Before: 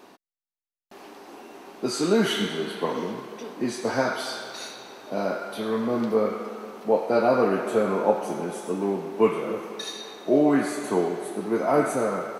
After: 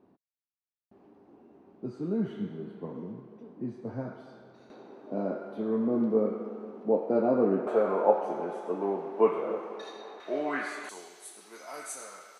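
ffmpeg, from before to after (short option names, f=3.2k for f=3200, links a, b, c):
-af "asetnsamples=n=441:p=0,asendcmd='4.7 bandpass f 270;7.67 bandpass f 680;10.2 bandpass f 1800;10.89 bandpass f 7200',bandpass=f=100:t=q:w=1:csg=0"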